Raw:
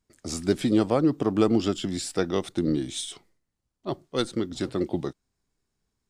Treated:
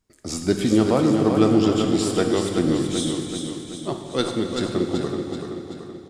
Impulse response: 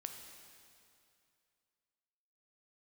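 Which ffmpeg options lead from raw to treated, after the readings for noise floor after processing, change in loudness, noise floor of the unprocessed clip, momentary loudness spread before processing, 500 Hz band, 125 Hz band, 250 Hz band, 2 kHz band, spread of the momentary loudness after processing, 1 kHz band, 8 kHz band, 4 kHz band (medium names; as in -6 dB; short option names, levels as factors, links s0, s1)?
-41 dBFS, +4.5 dB, -81 dBFS, 13 LU, +5.0 dB, +6.0 dB, +5.5 dB, +5.5 dB, 14 LU, +5.5 dB, +5.5 dB, +5.5 dB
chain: -filter_complex "[0:a]aecho=1:1:381|762|1143|1524|1905|2286:0.501|0.261|0.136|0.0705|0.0366|0.0191[s0];[1:a]atrim=start_sample=2205[s1];[s0][s1]afir=irnorm=-1:irlink=0,volume=2.24"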